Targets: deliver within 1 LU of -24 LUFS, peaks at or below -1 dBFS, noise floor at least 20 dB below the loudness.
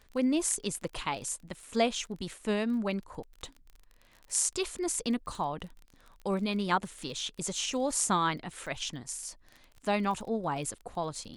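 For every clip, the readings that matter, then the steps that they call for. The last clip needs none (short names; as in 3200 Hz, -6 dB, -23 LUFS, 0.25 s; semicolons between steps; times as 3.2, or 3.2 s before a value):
ticks 27/s; loudness -32.0 LUFS; peak -11.5 dBFS; loudness target -24.0 LUFS
-> de-click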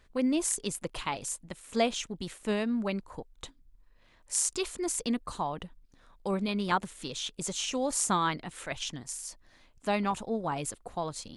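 ticks 0/s; loudness -32.0 LUFS; peak -11.5 dBFS; loudness target -24.0 LUFS
-> gain +8 dB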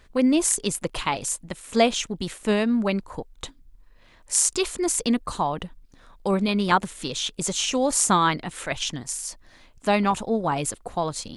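loudness -24.0 LUFS; peak -3.5 dBFS; noise floor -54 dBFS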